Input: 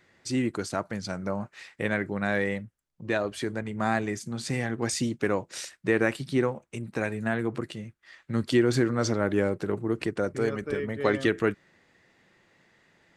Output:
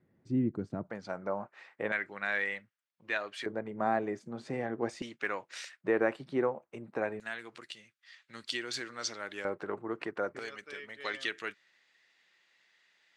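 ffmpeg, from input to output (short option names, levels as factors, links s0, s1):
-af "asetnsamples=n=441:p=0,asendcmd='0.9 bandpass f 790;1.92 bandpass f 2200;3.46 bandpass f 590;5.02 bandpass f 2000;5.81 bandpass f 720;7.2 bandpass f 3900;9.45 bandpass f 1100;10.39 bandpass f 3700',bandpass=f=170:t=q:w=0.96:csg=0"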